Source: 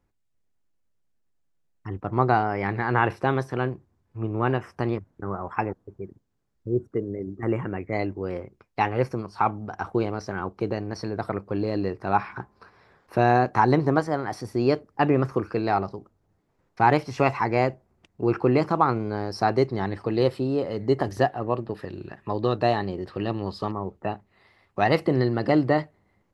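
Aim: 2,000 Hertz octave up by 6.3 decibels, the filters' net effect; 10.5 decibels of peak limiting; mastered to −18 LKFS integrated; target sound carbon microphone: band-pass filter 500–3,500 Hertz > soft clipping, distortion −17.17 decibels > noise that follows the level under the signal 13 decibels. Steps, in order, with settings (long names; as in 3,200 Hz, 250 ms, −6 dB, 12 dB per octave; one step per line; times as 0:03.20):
parametric band 2,000 Hz +8.5 dB
brickwall limiter −13 dBFS
band-pass filter 500–3,500 Hz
soft clipping −18.5 dBFS
noise that follows the level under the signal 13 dB
level +14 dB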